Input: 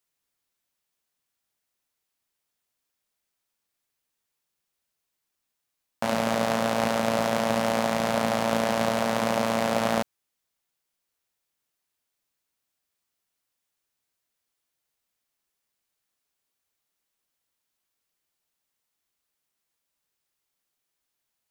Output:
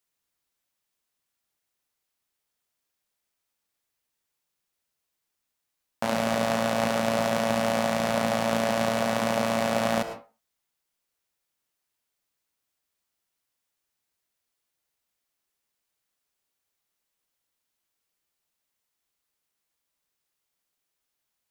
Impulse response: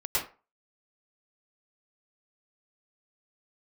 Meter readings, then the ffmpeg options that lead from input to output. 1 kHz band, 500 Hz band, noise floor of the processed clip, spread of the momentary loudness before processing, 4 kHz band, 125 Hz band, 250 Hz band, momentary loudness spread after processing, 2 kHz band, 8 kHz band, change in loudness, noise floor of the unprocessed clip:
-1.0 dB, 0.0 dB, -82 dBFS, 2 LU, 0.0 dB, +0.5 dB, -0.5 dB, 4 LU, 0.0 dB, 0.0 dB, -0.5 dB, -82 dBFS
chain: -filter_complex "[0:a]asplit=2[a][b];[1:a]atrim=start_sample=2205,afade=t=out:st=0.44:d=0.01,atrim=end_sample=19845[c];[b][c]afir=irnorm=-1:irlink=0,volume=-16.5dB[d];[a][d]amix=inputs=2:normalize=0,volume=-1.5dB"

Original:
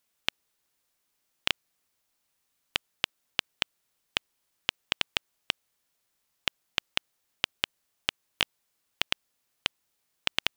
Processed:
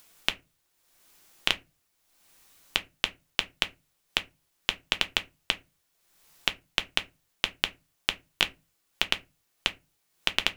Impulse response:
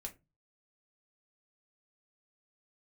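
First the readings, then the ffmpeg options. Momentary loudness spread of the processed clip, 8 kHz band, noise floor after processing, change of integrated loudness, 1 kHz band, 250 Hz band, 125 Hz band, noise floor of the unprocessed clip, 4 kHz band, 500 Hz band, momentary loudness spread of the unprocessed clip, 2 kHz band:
3 LU, +2.5 dB, -74 dBFS, +2.5 dB, +2.5 dB, +3.5 dB, +3.0 dB, -78 dBFS, +2.5 dB, +3.0 dB, 3 LU, +3.0 dB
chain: -filter_complex "[0:a]acompressor=mode=upward:threshold=-48dB:ratio=2.5,asplit=2[a][b];[1:a]atrim=start_sample=2205[c];[b][c]afir=irnorm=-1:irlink=0,volume=6dB[d];[a][d]amix=inputs=2:normalize=0,volume=-4dB"

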